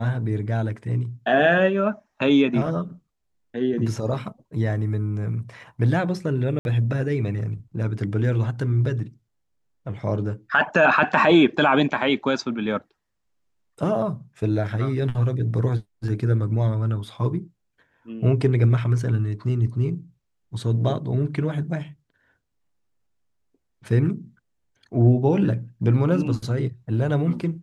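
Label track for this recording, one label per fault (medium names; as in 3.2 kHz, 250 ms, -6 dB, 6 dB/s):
6.590000	6.650000	dropout 61 ms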